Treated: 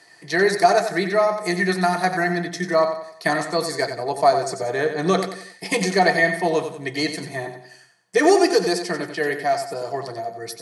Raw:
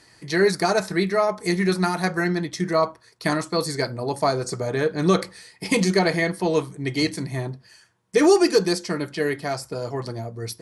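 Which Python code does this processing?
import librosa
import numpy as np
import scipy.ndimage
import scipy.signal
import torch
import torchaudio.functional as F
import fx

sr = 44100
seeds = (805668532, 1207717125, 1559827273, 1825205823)

p1 = scipy.signal.sosfilt(scipy.signal.butter(4, 160.0, 'highpass', fs=sr, output='sos'), x)
p2 = fx.peak_eq(p1, sr, hz=240.0, db=-14.5, octaves=0.28)
p3 = fx.small_body(p2, sr, hz=(710.0, 1800.0), ring_ms=45, db=11)
y = p3 + fx.echo_feedback(p3, sr, ms=91, feedback_pct=40, wet_db=-8.5, dry=0)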